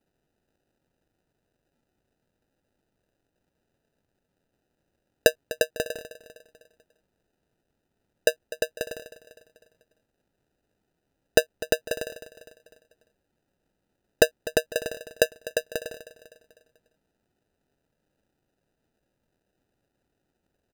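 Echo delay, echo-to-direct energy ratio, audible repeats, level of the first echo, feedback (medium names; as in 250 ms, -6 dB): 250 ms, -15.0 dB, 4, -16.0 dB, 49%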